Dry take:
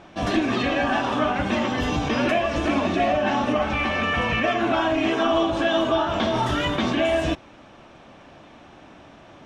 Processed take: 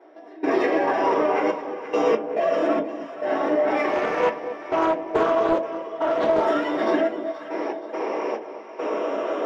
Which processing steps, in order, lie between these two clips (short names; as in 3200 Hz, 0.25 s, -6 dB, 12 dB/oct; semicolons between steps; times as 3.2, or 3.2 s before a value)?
moving spectral ripple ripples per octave 0.8, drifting +0.29 Hz, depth 6 dB; steep high-pass 280 Hz 36 dB/oct; bell 600 Hz +10.5 dB 0.36 oct; limiter -18 dBFS, peak gain reduction 15 dB; compressor 12:1, threshold -35 dBFS, peak gain reduction 14 dB; step gate "..xxxxx..x.xx" 70 bpm -24 dB; hard clip -35 dBFS, distortion -16 dB; echo with dull and thin repeats by turns 0.238 s, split 820 Hz, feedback 69%, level -9.5 dB; reverb, pre-delay 3 ms, DRR -5 dB; 3.92–6.45 Doppler distortion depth 0.28 ms